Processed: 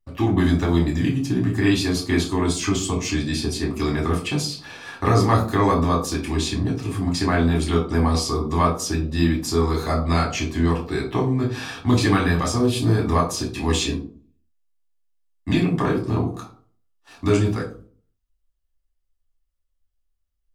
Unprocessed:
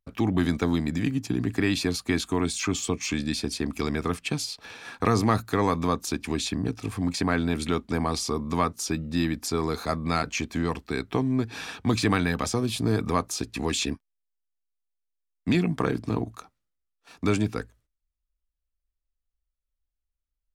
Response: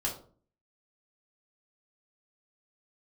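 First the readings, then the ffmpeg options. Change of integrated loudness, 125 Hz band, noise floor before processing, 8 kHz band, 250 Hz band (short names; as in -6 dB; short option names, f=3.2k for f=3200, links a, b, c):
+5.5 dB, +8.0 dB, -83 dBFS, +3.0 dB, +5.0 dB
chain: -filter_complex "[1:a]atrim=start_sample=2205[a];[0:a][a]afir=irnorm=-1:irlink=0"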